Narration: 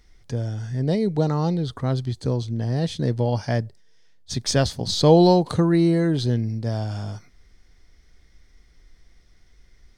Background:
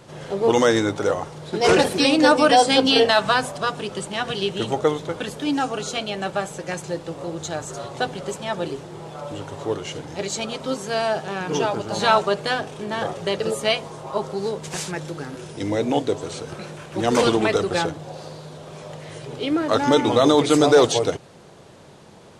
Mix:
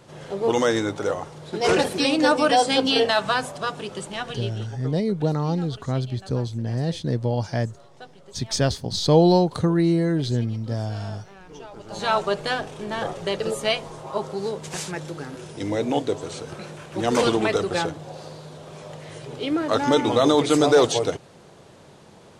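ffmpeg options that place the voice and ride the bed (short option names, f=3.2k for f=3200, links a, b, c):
-filter_complex "[0:a]adelay=4050,volume=-1.5dB[a];[1:a]volume=13.5dB,afade=t=out:st=4.1:d=0.61:silence=0.16788,afade=t=in:st=11.7:d=0.63:silence=0.141254[b];[a][b]amix=inputs=2:normalize=0"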